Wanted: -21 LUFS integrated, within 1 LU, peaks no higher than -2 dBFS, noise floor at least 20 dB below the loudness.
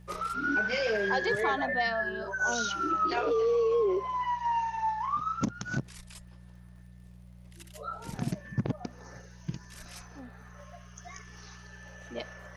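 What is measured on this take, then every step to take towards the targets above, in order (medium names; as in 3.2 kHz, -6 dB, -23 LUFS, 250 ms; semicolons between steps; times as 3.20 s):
tick rate 42 per s; hum 60 Hz; highest harmonic 180 Hz; hum level -48 dBFS; loudness -30.0 LUFS; peak level -17.0 dBFS; loudness target -21.0 LUFS
-> de-click; de-hum 60 Hz, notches 3; trim +9 dB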